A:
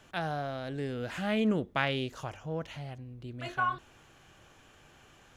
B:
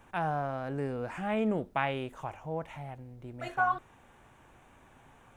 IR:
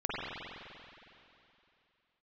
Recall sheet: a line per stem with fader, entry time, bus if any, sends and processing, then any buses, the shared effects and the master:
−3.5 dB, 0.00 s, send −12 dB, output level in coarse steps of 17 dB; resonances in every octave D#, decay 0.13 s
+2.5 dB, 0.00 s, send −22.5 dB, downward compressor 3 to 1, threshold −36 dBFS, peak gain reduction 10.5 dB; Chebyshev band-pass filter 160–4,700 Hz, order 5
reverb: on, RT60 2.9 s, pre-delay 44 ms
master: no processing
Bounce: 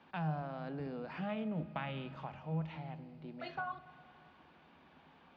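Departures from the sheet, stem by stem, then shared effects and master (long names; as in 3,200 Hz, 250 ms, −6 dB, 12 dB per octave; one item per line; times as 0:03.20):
stem B +2.5 dB → −4.5 dB
master: extra bass and treble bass +5 dB, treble +13 dB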